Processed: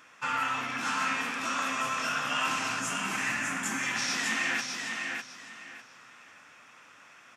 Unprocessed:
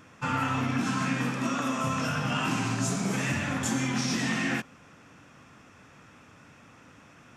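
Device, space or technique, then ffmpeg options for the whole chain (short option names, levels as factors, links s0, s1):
filter by subtraction: -filter_complex "[0:a]asplit=2[s0][s1];[s1]lowpass=1700,volume=-1[s2];[s0][s2]amix=inputs=2:normalize=0,asettb=1/sr,asplit=3[s3][s4][s5];[s3]atrim=end=2.804[s6];[s4]atrim=start=2.8:end=3.83,asetpts=PTS-STARTPTS,afade=t=in:d=0.004:c=qsin,afade=t=out:st=1.026:d=0.004:c=qsin,equalizer=f=250:t=o:w=1:g=6,equalizer=f=500:t=o:w=1:g=-7,equalizer=f=2000:t=o:w=1:g=3,equalizer=f=4000:t=o:w=1:g=-10[s7];[s5]atrim=start=3.826[s8];[s6][s7]acrossfade=d=0.004:c1=hsin:c2=qsin[s9];[s9][s8]acrossfade=d=0.004:c1=qsin:c2=hsin,aecho=1:1:602|1204|1806:0.596|0.149|0.0372"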